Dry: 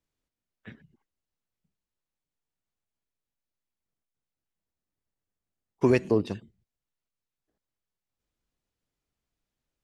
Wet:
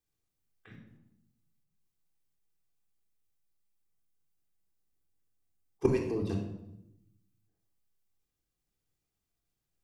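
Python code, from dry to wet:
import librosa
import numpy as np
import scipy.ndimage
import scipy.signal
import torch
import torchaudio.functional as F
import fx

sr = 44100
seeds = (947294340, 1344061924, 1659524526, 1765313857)

p1 = fx.high_shelf(x, sr, hz=6200.0, db=10.5)
p2 = fx.level_steps(p1, sr, step_db=18)
p3 = p2 + fx.echo_feedback(p2, sr, ms=83, feedback_pct=59, wet_db=-21.5, dry=0)
y = fx.room_shoebox(p3, sr, seeds[0], volume_m3=2300.0, walls='furnished', distance_m=3.7)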